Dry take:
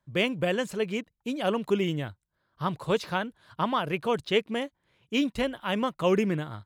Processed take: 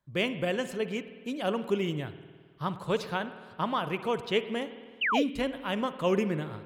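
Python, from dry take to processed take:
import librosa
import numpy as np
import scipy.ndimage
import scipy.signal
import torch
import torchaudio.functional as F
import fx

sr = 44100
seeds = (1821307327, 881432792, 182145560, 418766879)

y = fx.rev_spring(x, sr, rt60_s=1.7, pass_ms=(52,), chirp_ms=40, drr_db=11.5)
y = fx.spec_paint(y, sr, seeds[0], shape='fall', start_s=5.01, length_s=0.22, low_hz=410.0, high_hz=3200.0, level_db=-24.0)
y = F.gain(torch.from_numpy(y), -3.0).numpy()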